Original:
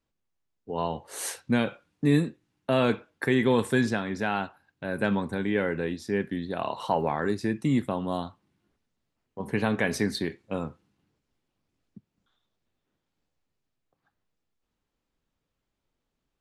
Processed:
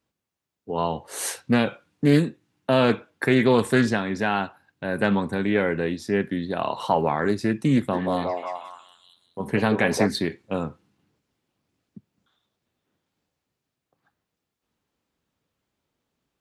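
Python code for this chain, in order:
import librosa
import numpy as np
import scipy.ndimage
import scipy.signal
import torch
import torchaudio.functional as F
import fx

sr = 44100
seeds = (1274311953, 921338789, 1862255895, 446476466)

y = scipy.signal.sosfilt(scipy.signal.butter(2, 77.0, 'highpass', fs=sr, output='sos'), x)
y = fx.echo_stepped(y, sr, ms=181, hz=530.0, octaves=0.7, feedback_pct=70, wet_db=0.0, at=(7.92, 10.06), fade=0.02)
y = fx.doppler_dist(y, sr, depth_ms=0.18)
y = F.gain(torch.from_numpy(y), 4.5).numpy()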